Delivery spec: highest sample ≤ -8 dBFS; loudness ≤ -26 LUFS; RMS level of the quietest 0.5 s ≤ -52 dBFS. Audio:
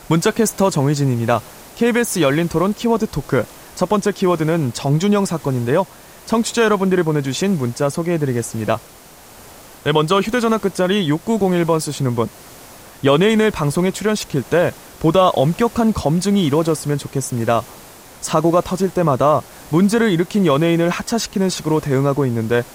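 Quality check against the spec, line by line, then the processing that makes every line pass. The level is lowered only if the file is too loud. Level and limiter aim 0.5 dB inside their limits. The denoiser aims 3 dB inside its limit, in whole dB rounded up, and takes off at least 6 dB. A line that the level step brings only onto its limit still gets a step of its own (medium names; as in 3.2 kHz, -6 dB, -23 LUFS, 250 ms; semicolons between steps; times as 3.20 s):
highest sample -2.0 dBFS: fail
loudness -18.0 LUFS: fail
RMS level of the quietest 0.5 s -42 dBFS: fail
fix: noise reduction 6 dB, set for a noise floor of -42 dBFS; trim -8.5 dB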